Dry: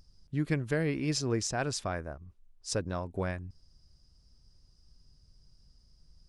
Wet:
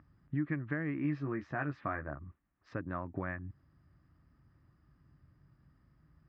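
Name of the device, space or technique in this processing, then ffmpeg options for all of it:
bass amplifier: -filter_complex "[0:a]asettb=1/sr,asplit=3[a][b][c];[a]atrim=end=1.034[d];[b]atrim=start=1.03:end=2.24,asetpts=PTS-STARTPTS,afade=t=in:d=0.004:c=qsin,afade=t=out:st=1.206:d=0.004:c=qsin,asplit=2[e][f];[f]adelay=14,volume=-4.5dB[g];[e][g]amix=inputs=2:normalize=0,atrim=end_sample=53361[h];[c]atrim=start=2.236[i];[d][h]acrossfade=d=0.004:c1=hsin:c2=qsin[j];[j][i]acrossfade=d=0.004:c1=qsin:c2=hsin,acompressor=threshold=-40dB:ratio=4,highpass=f=61:w=0.5412,highpass=f=61:w=1.3066,equalizer=f=64:t=q:w=4:g=-7,equalizer=f=140:t=q:w=4:g=3,equalizer=f=300:t=q:w=4:g=8,equalizer=f=450:t=q:w=4:g=-7,equalizer=f=1.2k:t=q:w=4:g=9,equalizer=f=1.8k:t=q:w=4:g=9,lowpass=f=2.3k:w=0.5412,lowpass=f=2.3k:w=1.3066,volume=3dB"

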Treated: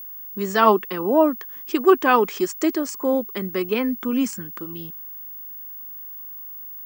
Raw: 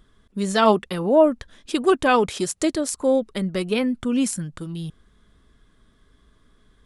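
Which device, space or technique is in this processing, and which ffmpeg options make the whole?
old television with a line whistle: -af "highpass=f=210:w=0.5412,highpass=f=210:w=1.3066,equalizer=f=370:t=q:w=4:g=4,equalizer=f=580:t=q:w=4:g=-5,equalizer=f=1.1k:t=q:w=4:g=6,equalizer=f=1.8k:t=q:w=4:g=3,equalizer=f=3.8k:t=q:w=4:g=-10,lowpass=f=7k:w=0.5412,lowpass=f=7k:w=1.3066,aeval=exprs='val(0)+0.02*sin(2*PI*15625*n/s)':c=same"

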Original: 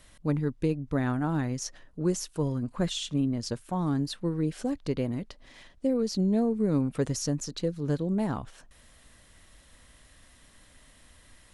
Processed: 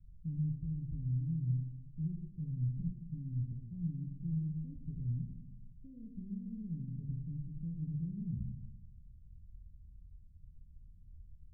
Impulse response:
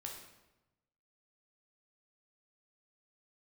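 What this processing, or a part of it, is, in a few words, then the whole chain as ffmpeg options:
club heard from the street: -filter_complex "[0:a]alimiter=level_in=2dB:limit=-24dB:level=0:latency=1,volume=-2dB,lowpass=f=150:w=0.5412,lowpass=f=150:w=1.3066[a];[1:a]atrim=start_sample=2205[b];[a][b]afir=irnorm=-1:irlink=0,volume=6dB"

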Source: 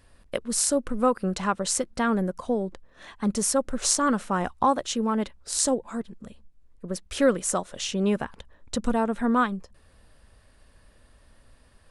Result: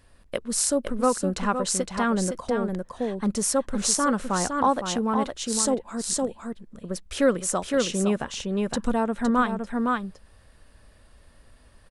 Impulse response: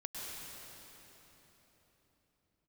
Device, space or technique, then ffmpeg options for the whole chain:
ducked delay: -filter_complex "[0:a]asplit=3[a][b][c];[b]adelay=512,volume=-2.5dB[d];[c]apad=whole_len=547444[e];[d][e]sidechaincompress=threshold=-25dB:ratio=8:attack=16:release=418[f];[a][f]amix=inputs=2:normalize=0"

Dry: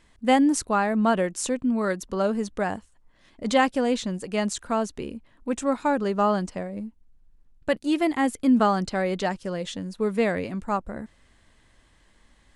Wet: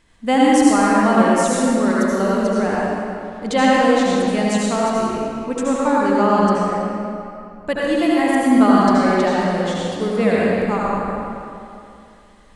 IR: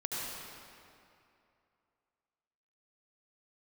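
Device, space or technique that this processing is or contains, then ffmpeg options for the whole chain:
stairwell: -filter_complex "[1:a]atrim=start_sample=2205[a];[0:a][a]afir=irnorm=-1:irlink=0,volume=3.5dB"

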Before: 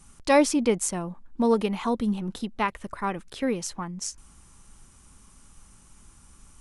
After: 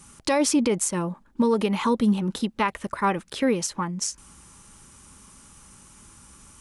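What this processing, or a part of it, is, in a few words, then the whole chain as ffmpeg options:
PA system with an anti-feedback notch: -af "highpass=f=110:p=1,asuperstop=centerf=720:order=8:qfactor=7.8,alimiter=limit=-19.5dB:level=0:latency=1:release=100,volume=6.5dB"

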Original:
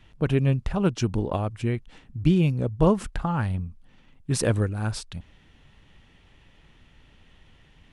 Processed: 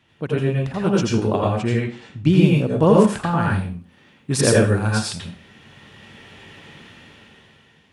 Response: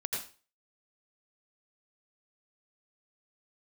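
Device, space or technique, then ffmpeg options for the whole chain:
far laptop microphone: -filter_complex "[1:a]atrim=start_sample=2205[a];[0:a][a]afir=irnorm=-1:irlink=0,highpass=140,dynaudnorm=f=230:g=9:m=14.5dB,asettb=1/sr,asplit=3[b][c][d];[b]atrim=end=1.354[e];[c]atrim=start=1.35:end=2.28,asetpts=PTS-STARTPTS,afade=t=in:d=0.004:c=qsin,afade=t=out:st=0.926:d=0.004:c=qsin,lowpass=f=8.4k:w=0.5412,lowpass=f=8.4k:w=1.3066[f];[d]atrim=start=2.276[g];[e][f]acrossfade=d=0.004:c1=hsin:c2=qsin[h];[h][g]acrossfade=d=0.004:c1=qsin:c2=hsin,volume=-1dB"

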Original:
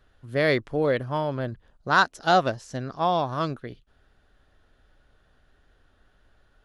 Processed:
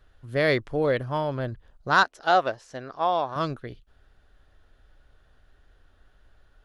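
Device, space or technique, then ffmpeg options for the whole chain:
low shelf boost with a cut just above: -filter_complex "[0:a]lowshelf=f=92:g=5.5,equalizer=f=200:t=o:w=1.1:g=-3.5,asettb=1/sr,asplit=3[a][b][c];[a]atrim=end=2.034[d];[b]atrim=start=2.03:end=3.36,asetpts=PTS-STARTPTS,afade=t=in:d=0.004:c=qsin,afade=t=out:st=1.326:d=0.004:c=qsin,bass=f=250:g=-13,treble=f=4k:g=-8[e];[c]atrim=start=3.356[f];[d][e]acrossfade=d=0.004:c1=hsin:c2=qsin[g];[g][f]acrossfade=d=0.004:c1=qsin:c2=hsin"

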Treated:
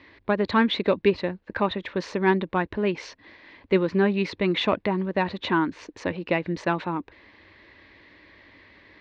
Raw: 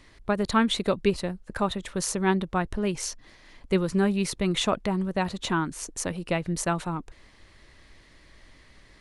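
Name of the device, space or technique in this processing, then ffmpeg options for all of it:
overdrive pedal into a guitar cabinet: -filter_complex "[0:a]asplit=2[a][b];[b]highpass=f=720:p=1,volume=9dB,asoftclip=type=tanh:threshold=-10dB[c];[a][c]amix=inputs=2:normalize=0,lowpass=f=3k:p=1,volume=-6dB,highpass=81,equalizer=f=95:t=q:w=4:g=6,equalizer=f=140:t=q:w=4:g=-8,equalizer=f=300:t=q:w=4:g=5,equalizer=f=720:t=q:w=4:g=-6,equalizer=f=1.3k:t=q:w=4:g=-8,equalizer=f=3.1k:t=q:w=4:g=-5,lowpass=f=3.8k:w=0.5412,lowpass=f=3.8k:w=1.3066,volume=4dB"

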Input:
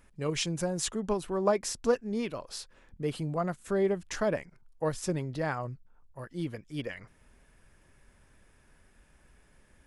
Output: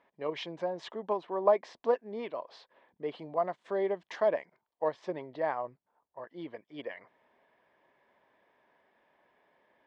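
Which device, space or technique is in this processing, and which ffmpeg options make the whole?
phone earpiece: -filter_complex "[0:a]highpass=420,equalizer=f=660:t=q:w=4:g=5,equalizer=f=970:t=q:w=4:g=5,equalizer=f=1.4k:t=q:w=4:g=-10,equalizer=f=2.6k:t=q:w=4:g=-8,lowpass=f=3.2k:w=0.5412,lowpass=f=3.2k:w=1.3066,asettb=1/sr,asplit=3[a][b][c];[a]atrim=end=3.194[d];[b]atrim=start=3.19:end=4.88,asetpts=PTS-STARTPTS,afade=t=in:d=0.004:c=qsin,afade=t=out:st=1.686:d=0.004:c=qsin,aemphasis=mode=production:type=50fm[e];[c]atrim=start=4.876[f];[d][e]acrossfade=d=0.004:c1=hsin:c2=qsin[g];[g][f]acrossfade=d=0.004:c1=qsin:c2=hsin"

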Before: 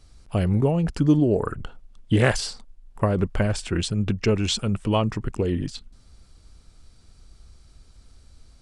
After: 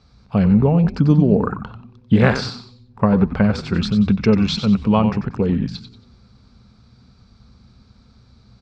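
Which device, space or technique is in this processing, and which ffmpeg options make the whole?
frequency-shifting delay pedal into a guitar cabinet: -filter_complex "[0:a]asplit=5[a][b][c][d][e];[b]adelay=92,afreqshift=-130,volume=-9dB[f];[c]adelay=184,afreqshift=-260,volume=-18.9dB[g];[d]adelay=276,afreqshift=-390,volume=-28.8dB[h];[e]adelay=368,afreqshift=-520,volume=-38.7dB[i];[a][f][g][h][i]amix=inputs=5:normalize=0,highpass=82,equalizer=f=99:t=q:w=4:g=-5,equalizer=f=200:t=q:w=4:g=7,equalizer=f=330:t=q:w=4:g=-10,equalizer=f=620:t=q:w=4:g=-5,equalizer=f=1.9k:t=q:w=4:g=-6,equalizer=f=3k:t=q:w=4:g=-10,lowpass=f=4.5k:w=0.5412,lowpass=f=4.5k:w=1.3066,volume=6.5dB"

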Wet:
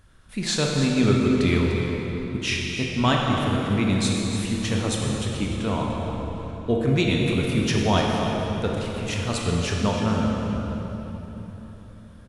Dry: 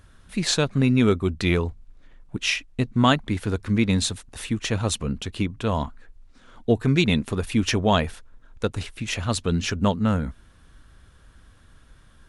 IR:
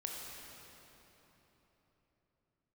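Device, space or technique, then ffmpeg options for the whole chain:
cave: -filter_complex "[0:a]aecho=1:1:297:0.282[a];[1:a]atrim=start_sample=2205[b];[a][b]afir=irnorm=-1:irlink=0"

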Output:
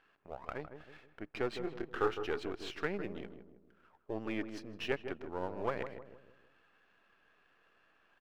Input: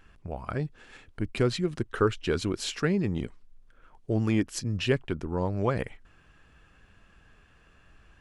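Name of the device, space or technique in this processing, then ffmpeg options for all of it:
crystal radio: -filter_complex "[0:a]lowpass=6.3k,asettb=1/sr,asplit=3[a][b][c];[a]atrim=end=1.644[d];[b]atrim=start=1.64:end=2.2,asetpts=PTS-STARTPTS,afade=t=in:d=0.004:c=qsin,afade=t=out:st=0.556:d=0.004:c=qsin,asplit=2[e][f];[f]adelay=26,volume=-5dB[g];[e][g]amix=inputs=2:normalize=0,atrim=end_sample=24696[h];[c]atrim=start=2.196[i];[d][h]acrossfade=d=0.004:c1=hsin:c2=qsin[j];[j][i]acrossfade=d=0.004:c1=qsin:c2=hsin,highpass=390,lowpass=3.1k,aeval=exprs='if(lt(val(0),0),0.447*val(0),val(0))':c=same,asplit=2[k][l];[l]adelay=158,lowpass=f=890:p=1,volume=-7.5dB,asplit=2[m][n];[n]adelay=158,lowpass=f=890:p=1,volume=0.47,asplit=2[o][p];[p]adelay=158,lowpass=f=890:p=1,volume=0.47,asplit=2[q][r];[r]adelay=158,lowpass=f=890:p=1,volume=0.47,asplit=2[s][t];[t]adelay=158,lowpass=f=890:p=1,volume=0.47[u];[k][m][o][q][s][u]amix=inputs=6:normalize=0,volume=-4dB"

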